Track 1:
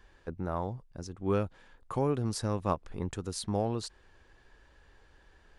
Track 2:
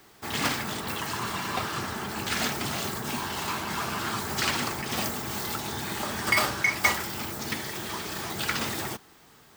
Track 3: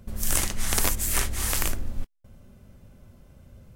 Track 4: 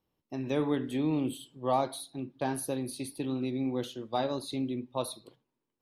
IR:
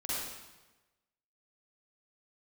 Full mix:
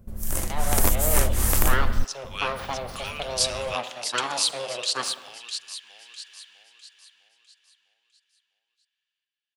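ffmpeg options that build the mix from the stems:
-filter_complex "[0:a]dynaudnorm=framelen=480:gausssize=3:maxgain=5dB,highpass=frequency=2900:width_type=q:width=3,adelay=1050,volume=-3dB,asplit=3[link_01][link_02][link_03];[link_02]volume=-22.5dB[link_04];[link_03]volume=-6.5dB[link_05];[2:a]equalizer=frequency=3500:width_type=o:width=2.9:gain=-9.5,volume=-2dB[link_06];[3:a]aeval=exprs='abs(val(0))':channel_layout=same,highpass=frequency=120:width=0.5412,highpass=frequency=120:width=1.3066,acrossover=split=420 5400:gain=0.141 1 0.2[link_07][link_08][link_09];[link_07][link_08][link_09]amix=inputs=3:normalize=0,volume=-3dB,asplit=2[link_10][link_11];[link_11]volume=-14dB[link_12];[4:a]atrim=start_sample=2205[link_13];[link_04][link_12]amix=inputs=2:normalize=0[link_14];[link_14][link_13]afir=irnorm=-1:irlink=0[link_15];[link_05]aecho=0:1:653|1306|1959|2612|3265|3918:1|0.4|0.16|0.064|0.0256|0.0102[link_16];[link_01][link_06][link_10][link_15][link_16]amix=inputs=5:normalize=0,dynaudnorm=framelen=140:gausssize=9:maxgain=11dB"

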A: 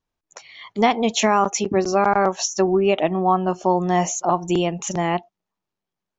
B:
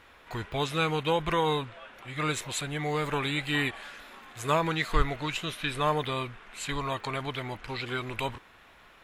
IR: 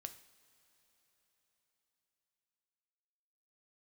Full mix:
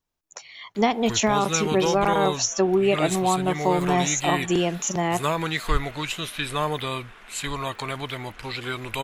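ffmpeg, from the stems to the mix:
-filter_complex "[0:a]volume=-2dB[link_01];[1:a]adelay=750,volume=2dB[link_02];[link_01][link_02]amix=inputs=2:normalize=0,highshelf=frequency=5500:gain=8,acrossover=split=440[link_03][link_04];[link_04]acompressor=threshold=-22dB:ratio=2[link_05];[link_03][link_05]amix=inputs=2:normalize=0"

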